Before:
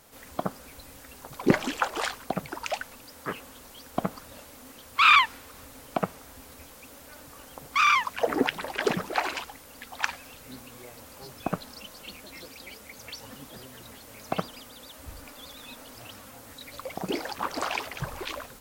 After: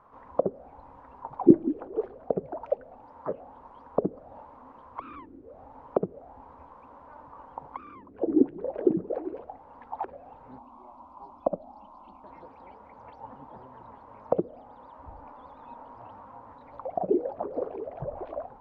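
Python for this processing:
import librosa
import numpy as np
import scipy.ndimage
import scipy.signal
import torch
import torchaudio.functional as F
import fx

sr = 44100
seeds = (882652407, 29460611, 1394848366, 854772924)

y = fx.fixed_phaser(x, sr, hz=470.0, stages=6, at=(10.58, 12.24))
y = fx.envelope_lowpass(y, sr, base_hz=330.0, top_hz=1100.0, q=6.8, full_db=-24.0, direction='down')
y = F.gain(torch.from_numpy(y), -4.5).numpy()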